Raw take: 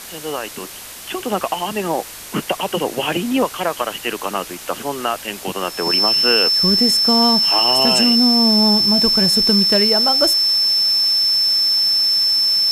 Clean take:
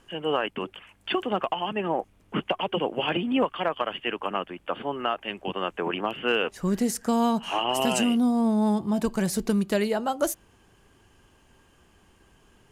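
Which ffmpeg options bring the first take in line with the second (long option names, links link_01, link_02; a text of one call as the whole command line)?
ffmpeg -i in.wav -af "bandreject=frequency=5300:width=30,afwtdn=0.022,asetnsamples=nb_out_samples=441:pad=0,asendcmd='1.2 volume volume -6dB',volume=0dB" out.wav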